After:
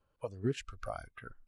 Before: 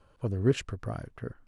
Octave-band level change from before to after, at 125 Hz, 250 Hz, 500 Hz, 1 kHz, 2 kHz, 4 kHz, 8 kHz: −11.0, −8.5, −7.5, −0.5, −4.5, −7.0, −6.5 decibels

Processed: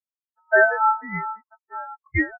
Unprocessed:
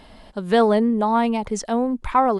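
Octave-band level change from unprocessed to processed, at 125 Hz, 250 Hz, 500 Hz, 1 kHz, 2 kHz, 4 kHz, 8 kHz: can't be measured, −13.0 dB, −4.0 dB, −3.5 dB, +12.5 dB, below −40 dB, below −40 dB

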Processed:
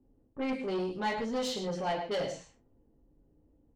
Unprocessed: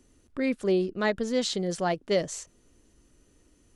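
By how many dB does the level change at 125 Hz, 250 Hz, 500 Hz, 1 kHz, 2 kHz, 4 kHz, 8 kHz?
−7.0, −6.5, −6.5, −0.5, −5.5, −5.0, −9.5 decibels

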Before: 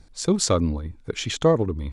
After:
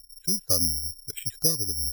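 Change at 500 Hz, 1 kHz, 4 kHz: −16.0, −19.0, +1.5 decibels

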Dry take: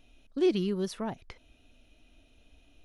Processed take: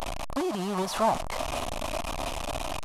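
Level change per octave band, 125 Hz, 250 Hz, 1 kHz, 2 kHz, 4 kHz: +3.0, −1.5, +17.5, +12.0, +8.5 decibels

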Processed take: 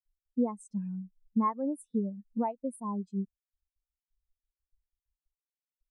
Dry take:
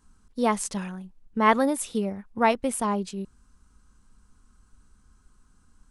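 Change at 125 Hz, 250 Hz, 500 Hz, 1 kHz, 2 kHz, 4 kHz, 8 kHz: can't be measured, −3.5 dB, −11.0 dB, −10.5 dB, below −25 dB, below −35 dB, −20.5 dB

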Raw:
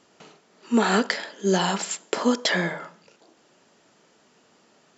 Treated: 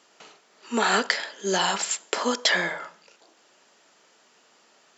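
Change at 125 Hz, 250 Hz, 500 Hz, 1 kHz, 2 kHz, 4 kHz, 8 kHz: −10.0 dB, −8.0 dB, −3.0 dB, +0.5 dB, +2.0 dB, +3.0 dB, can't be measured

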